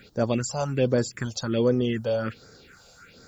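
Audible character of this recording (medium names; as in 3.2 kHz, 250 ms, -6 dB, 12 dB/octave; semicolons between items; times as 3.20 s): a quantiser's noise floor 12-bit, dither triangular; phasing stages 4, 1.3 Hz, lowest notch 290–2800 Hz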